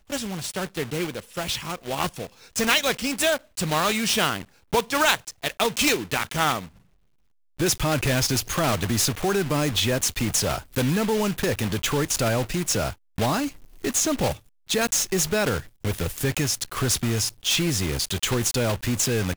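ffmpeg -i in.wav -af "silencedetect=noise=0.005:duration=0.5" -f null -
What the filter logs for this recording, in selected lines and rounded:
silence_start: 6.79
silence_end: 7.58 | silence_duration: 0.80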